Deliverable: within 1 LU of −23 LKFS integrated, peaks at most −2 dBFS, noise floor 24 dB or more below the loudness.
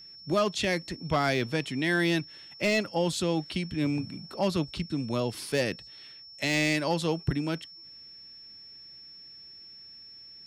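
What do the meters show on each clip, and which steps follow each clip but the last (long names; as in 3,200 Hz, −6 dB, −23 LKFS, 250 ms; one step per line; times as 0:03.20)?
share of clipped samples 0.2%; peaks flattened at −17.5 dBFS; interfering tone 5,400 Hz; level of the tone −46 dBFS; integrated loudness −29.0 LKFS; sample peak −17.5 dBFS; target loudness −23.0 LKFS
→ clipped peaks rebuilt −17.5 dBFS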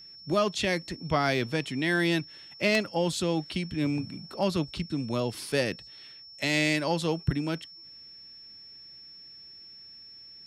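share of clipped samples 0.0%; interfering tone 5,400 Hz; level of the tone −46 dBFS
→ notch filter 5,400 Hz, Q 30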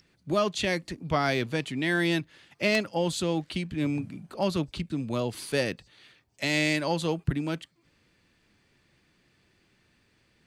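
interfering tone none found; integrated loudness −28.5 LKFS; sample peak −8.5 dBFS; target loudness −23.0 LKFS
→ level +5.5 dB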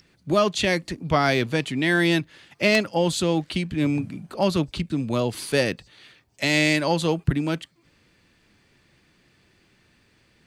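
integrated loudness −23.0 LKFS; sample peak −3.0 dBFS; background noise floor −62 dBFS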